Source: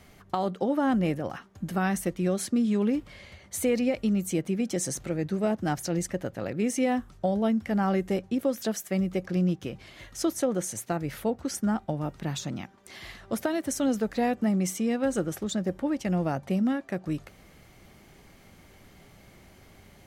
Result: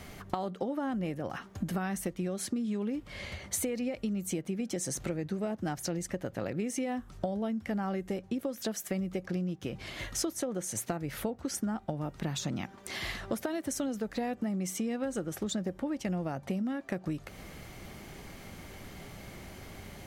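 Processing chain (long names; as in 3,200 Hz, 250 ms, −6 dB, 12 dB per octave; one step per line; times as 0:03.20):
downward compressor 16 to 1, threshold −37 dBFS, peak gain reduction 17 dB
level +7 dB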